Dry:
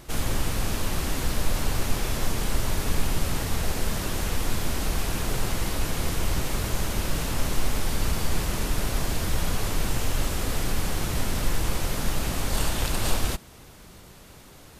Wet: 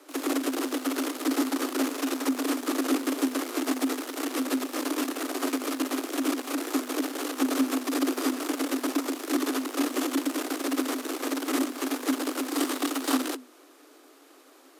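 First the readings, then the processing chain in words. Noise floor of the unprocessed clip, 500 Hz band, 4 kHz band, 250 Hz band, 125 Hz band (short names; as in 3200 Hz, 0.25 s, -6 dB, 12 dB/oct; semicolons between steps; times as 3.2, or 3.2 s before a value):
-48 dBFS, +2.5 dB, -2.5 dB, +8.0 dB, under -35 dB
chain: bell 980 Hz +5.5 dB 0.42 oct; notch 680 Hz, Q 18; added harmonics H 4 -6 dB, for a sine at -9 dBFS; frequency shift +250 Hz; gain -7 dB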